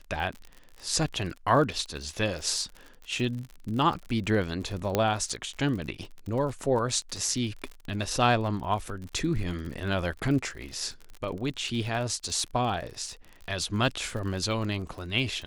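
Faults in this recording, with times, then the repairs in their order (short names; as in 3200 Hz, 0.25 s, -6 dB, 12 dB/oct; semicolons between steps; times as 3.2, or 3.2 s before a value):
crackle 45/s -35 dBFS
4.95 pop -10 dBFS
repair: de-click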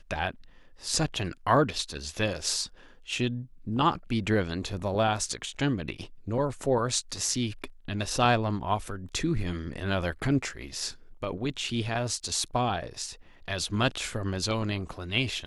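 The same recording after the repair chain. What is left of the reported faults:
none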